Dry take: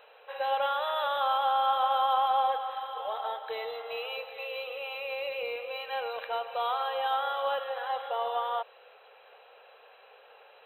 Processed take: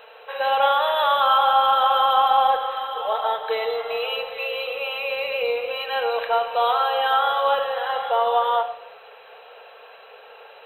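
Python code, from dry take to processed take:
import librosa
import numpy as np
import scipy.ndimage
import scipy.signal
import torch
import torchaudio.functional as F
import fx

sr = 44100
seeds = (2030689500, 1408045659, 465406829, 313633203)

y = fx.room_shoebox(x, sr, seeds[0], volume_m3=2100.0, walls='furnished', distance_m=1.6)
y = y * 10.0 ** (9.0 / 20.0)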